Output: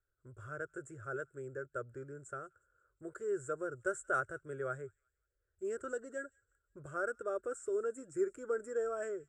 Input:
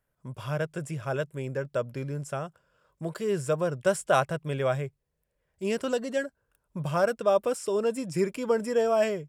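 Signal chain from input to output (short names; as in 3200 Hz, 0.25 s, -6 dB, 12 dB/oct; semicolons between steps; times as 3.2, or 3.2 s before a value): EQ curve 100 Hz 0 dB, 180 Hz -24 dB, 370 Hz 0 dB, 960 Hz -22 dB, 1400 Hz +4 dB, 2500 Hz -25 dB, 5000 Hz -26 dB, 7700 Hz -1 dB, 11000 Hz -25 dB; thin delay 0.178 s, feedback 37%, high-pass 2700 Hz, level -21.5 dB; gain -5 dB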